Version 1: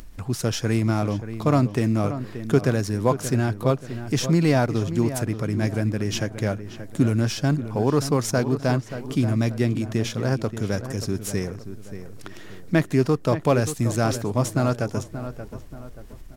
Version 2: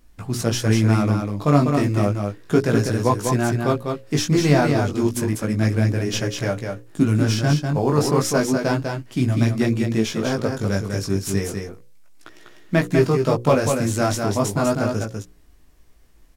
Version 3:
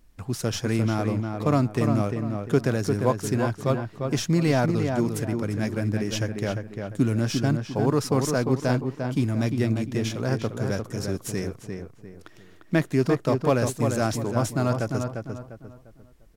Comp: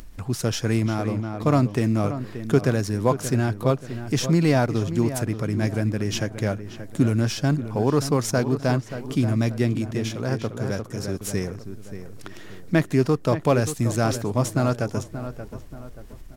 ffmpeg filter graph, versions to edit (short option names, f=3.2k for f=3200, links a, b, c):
-filter_complex "[2:a]asplit=2[a][b];[0:a]asplit=3[c][d][e];[c]atrim=end=0.862[f];[a]atrim=start=0.858:end=1.432[g];[d]atrim=start=1.428:end=9.912[h];[b]atrim=start=9.908:end=11.212[i];[e]atrim=start=11.208[j];[f][g]acrossfade=d=0.004:c1=hsin:c2=hsin[k];[k][h]acrossfade=d=0.004:c1=hsin:c2=hsin[l];[l][i]acrossfade=d=0.004:c1=hsin:c2=hsin[m];[m][j]acrossfade=d=0.004:c1=hsin:c2=hsin"